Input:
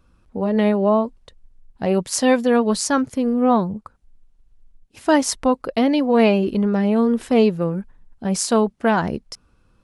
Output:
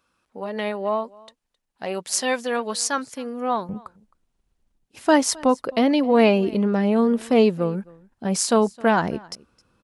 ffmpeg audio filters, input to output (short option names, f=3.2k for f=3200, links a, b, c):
-af "asetnsamples=n=441:p=0,asendcmd='3.69 highpass f 170',highpass=f=1.1k:p=1,aecho=1:1:264:0.0631"